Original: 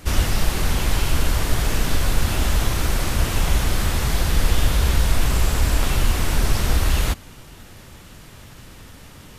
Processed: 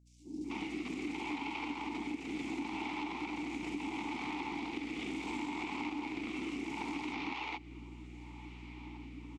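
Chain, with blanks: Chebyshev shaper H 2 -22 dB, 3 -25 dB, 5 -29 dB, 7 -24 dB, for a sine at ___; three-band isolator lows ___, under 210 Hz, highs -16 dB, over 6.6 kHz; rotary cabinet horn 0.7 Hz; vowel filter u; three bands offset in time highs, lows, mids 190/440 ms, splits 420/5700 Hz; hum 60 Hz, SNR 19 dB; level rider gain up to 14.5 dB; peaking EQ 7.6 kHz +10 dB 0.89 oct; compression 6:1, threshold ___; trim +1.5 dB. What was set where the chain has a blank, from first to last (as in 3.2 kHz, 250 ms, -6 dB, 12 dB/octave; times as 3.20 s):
-4 dBFS, -24 dB, -38 dBFS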